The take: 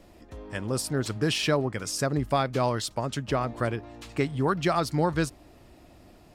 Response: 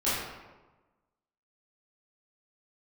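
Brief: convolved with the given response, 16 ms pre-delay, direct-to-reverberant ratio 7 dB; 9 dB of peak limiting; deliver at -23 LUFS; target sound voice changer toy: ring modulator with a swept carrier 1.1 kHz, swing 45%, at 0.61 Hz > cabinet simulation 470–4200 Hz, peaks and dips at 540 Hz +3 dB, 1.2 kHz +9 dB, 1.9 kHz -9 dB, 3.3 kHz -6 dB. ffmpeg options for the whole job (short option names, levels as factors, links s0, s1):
-filter_complex "[0:a]alimiter=limit=0.0891:level=0:latency=1,asplit=2[s0][s1];[1:a]atrim=start_sample=2205,adelay=16[s2];[s1][s2]afir=irnorm=-1:irlink=0,volume=0.126[s3];[s0][s3]amix=inputs=2:normalize=0,aeval=exprs='val(0)*sin(2*PI*1100*n/s+1100*0.45/0.61*sin(2*PI*0.61*n/s))':c=same,highpass=470,equalizer=f=540:t=q:w=4:g=3,equalizer=f=1200:t=q:w=4:g=9,equalizer=f=1900:t=q:w=4:g=-9,equalizer=f=3300:t=q:w=4:g=-6,lowpass=f=4200:w=0.5412,lowpass=f=4200:w=1.3066,volume=2.82"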